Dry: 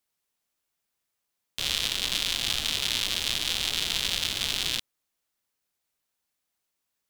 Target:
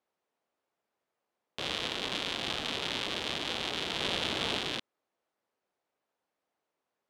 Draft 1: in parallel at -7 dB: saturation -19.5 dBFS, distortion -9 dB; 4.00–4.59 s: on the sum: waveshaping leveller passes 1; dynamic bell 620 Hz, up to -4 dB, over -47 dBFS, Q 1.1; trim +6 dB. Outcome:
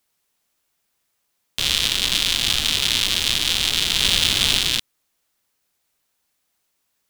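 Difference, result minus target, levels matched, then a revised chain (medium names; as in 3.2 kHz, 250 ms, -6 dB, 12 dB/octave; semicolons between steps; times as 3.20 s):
500 Hz band -14.0 dB
in parallel at -7 dB: saturation -19.5 dBFS, distortion -9 dB; 4.00–4.59 s: on the sum: waveshaping leveller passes 1; dynamic bell 620 Hz, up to -4 dB, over -47 dBFS, Q 1.1; band-pass filter 540 Hz, Q 0.92; trim +6 dB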